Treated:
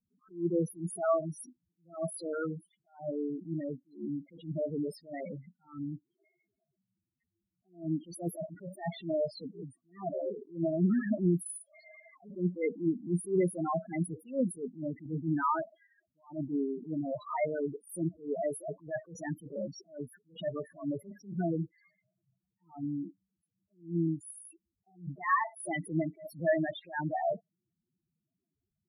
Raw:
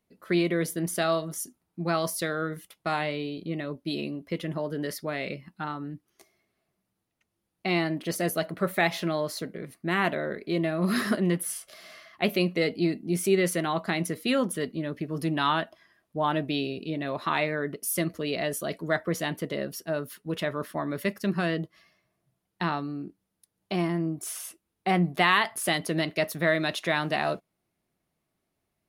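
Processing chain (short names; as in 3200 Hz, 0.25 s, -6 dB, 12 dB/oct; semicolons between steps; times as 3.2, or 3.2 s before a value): loudest bins only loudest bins 4; attack slew limiter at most 190 dB/s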